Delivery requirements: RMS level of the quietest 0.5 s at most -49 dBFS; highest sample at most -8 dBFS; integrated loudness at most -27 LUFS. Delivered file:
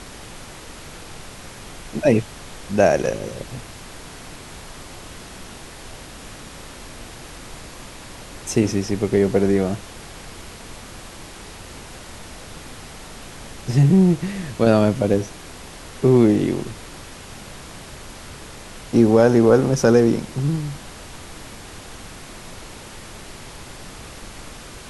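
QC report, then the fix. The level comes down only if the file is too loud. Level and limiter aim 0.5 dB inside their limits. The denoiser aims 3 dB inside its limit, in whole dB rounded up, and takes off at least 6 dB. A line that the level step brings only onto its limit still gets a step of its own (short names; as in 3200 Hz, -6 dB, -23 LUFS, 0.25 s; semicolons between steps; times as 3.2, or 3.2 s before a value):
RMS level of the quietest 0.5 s -38 dBFS: fail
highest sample -2.5 dBFS: fail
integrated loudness -18.5 LUFS: fail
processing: denoiser 6 dB, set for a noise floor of -38 dBFS; gain -9 dB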